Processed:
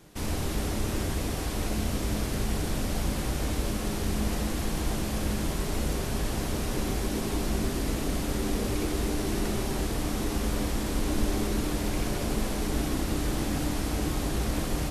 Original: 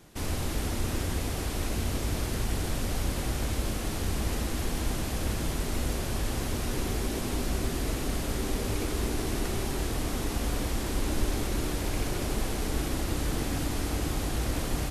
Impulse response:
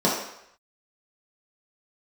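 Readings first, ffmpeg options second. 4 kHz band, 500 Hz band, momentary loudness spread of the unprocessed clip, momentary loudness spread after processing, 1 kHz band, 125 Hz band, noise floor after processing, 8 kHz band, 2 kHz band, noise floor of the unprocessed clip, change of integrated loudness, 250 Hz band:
+0.5 dB, +2.0 dB, 1 LU, 1 LU, +1.0 dB, +0.5 dB, -32 dBFS, 0.0 dB, +0.5 dB, -33 dBFS, +1.5 dB, +3.5 dB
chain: -filter_complex "[0:a]asplit=2[a][b];[1:a]atrim=start_sample=2205,adelay=10[c];[b][c]afir=irnorm=-1:irlink=0,volume=-24dB[d];[a][d]amix=inputs=2:normalize=0"

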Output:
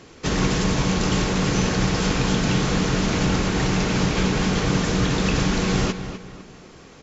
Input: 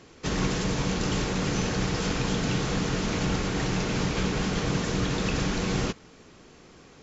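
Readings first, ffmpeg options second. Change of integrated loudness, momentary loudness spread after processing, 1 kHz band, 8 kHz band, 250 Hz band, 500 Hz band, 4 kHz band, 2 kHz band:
+6.0 dB, 2 LU, +6.0 dB, n/a, +6.5 dB, +5.5 dB, +5.5 dB, +6.0 dB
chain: -filter_complex "[0:a]asplit=2[a][b];[b]adelay=253,lowpass=f=4.1k:p=1,volume=-10.5dB,asplit=2[c][d];[d]adelay=253,lowpass=f=4.1k:p=1,volume=0.36,asplit=2[e][f];[f]adelay=253,lowpass=f=4.1k:p=1,volume=0.36,asplit=2[g][h];[h]adelay=253,lowpass=f=4.1k:p=1,volume=0.36[i];[a][c][e][g][i]amix=inputs=5:normalize=0,volume=5.5dB"

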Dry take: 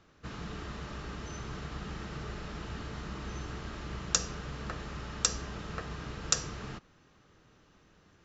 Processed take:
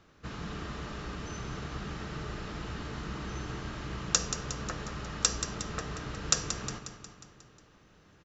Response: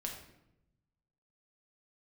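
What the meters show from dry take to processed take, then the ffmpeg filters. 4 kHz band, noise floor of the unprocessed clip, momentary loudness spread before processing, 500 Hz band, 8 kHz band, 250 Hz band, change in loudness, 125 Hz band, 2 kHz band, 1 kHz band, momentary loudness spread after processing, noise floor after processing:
+2.0 dB, -64 dBFS, 11 LU, +2.0 dB, n/a, +2.5 dB, +2.0 dB, +1.5 dB, +2.0 dB, +2.5 dB, 12 LU, -61 dBFS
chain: -af "aecho=1:1:180|360|540|720|900|1080|1260:0.335|0.194|0.113|0.0654|0.0379|0.022|0.0128,volume=1.5dB"

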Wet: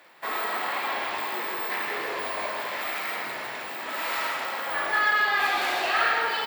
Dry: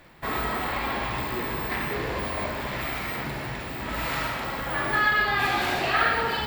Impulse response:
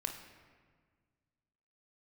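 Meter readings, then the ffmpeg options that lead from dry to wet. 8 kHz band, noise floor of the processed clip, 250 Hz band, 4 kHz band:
+1.0 dB, -36 dBFS, -9.5 dB, +0.5 dB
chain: -filter_complex "[0:a]highpass=500,asplit=2[a][b];[b]asoftclip=type=tanh:threshold=-22.5dB,volume=-5dB[c];[a][c]amix=inputs=2:normalize=0,aecho=1:1:161:0.473,volume=-3.5dB"

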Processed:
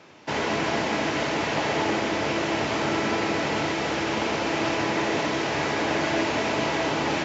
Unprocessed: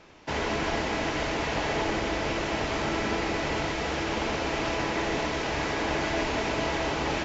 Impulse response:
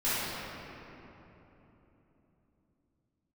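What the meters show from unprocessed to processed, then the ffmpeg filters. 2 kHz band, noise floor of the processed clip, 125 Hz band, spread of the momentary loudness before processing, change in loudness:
+3.0 dB, -28 dBFS, +1.0 dB, 1 LU, +3.5 dB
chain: -filter_complex "[0:a]highpass=f=100:w=0.5412,highpass=f=100:w=1.3066,asplit=2[a][b];[1:a]atrim=start_sample=2205[c];[b][c]afir=irnorm=-1:irlink=0,volume=-22dB[d];[a][d]amix=inputs=2:normalize=0,volume=2.5dB"

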